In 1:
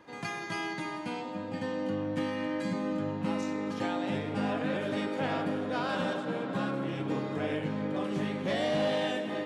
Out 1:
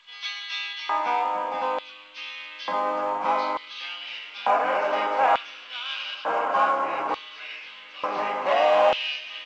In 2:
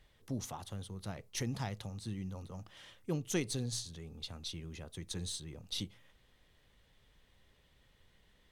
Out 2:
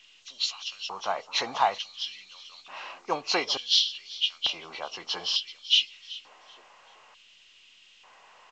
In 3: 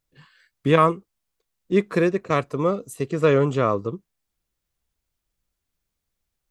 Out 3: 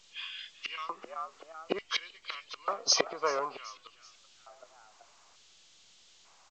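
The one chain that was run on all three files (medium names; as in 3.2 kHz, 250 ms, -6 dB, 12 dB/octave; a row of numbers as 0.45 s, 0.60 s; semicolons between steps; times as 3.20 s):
knee-point frequency compression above 1.9 kHz 1.5:1; peaking EQ 1.1 kHz +7 dB 0.35 oct; band-stop 1.8 kHz, Q 11; inverted gate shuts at -17 dBFS, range -27 dB; in parallel at -9 dB: saturation -29.5 dBFS; on the sum: frequency-shifting echo 382 ms, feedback 37%, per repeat +80 Hz, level -19 dB; LFO high-pass square 0.56 Hz 780–3200 Hz; µ-law 128 kbps 16 kHz; peak normalisation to -9 dBFS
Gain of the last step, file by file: +6.5 dB, +11.5 dB, +14.0 dB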